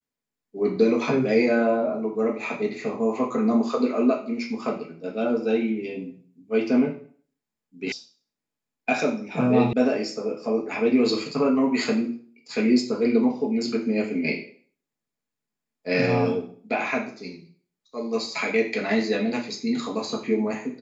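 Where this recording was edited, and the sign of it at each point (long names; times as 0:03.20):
0:07.92: cut off before it has died away
0:09.73: cut off before it has died away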